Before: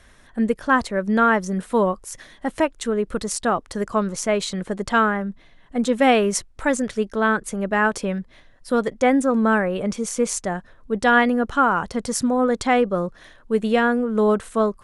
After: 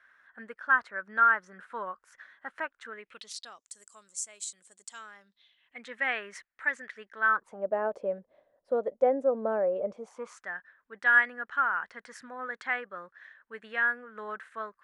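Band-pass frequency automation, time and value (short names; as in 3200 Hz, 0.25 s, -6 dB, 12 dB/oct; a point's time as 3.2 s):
band-pass, Q 4.5
2.85 s 1500 Hz
3.71 s 7800 Hz
4.87 s 7800 Hz
5.92 s 1800 Hz
7.18 s 1800 Hz
7.68 s 580 Hz
9.91 s 580 Hz
10.48 s 1700 Hz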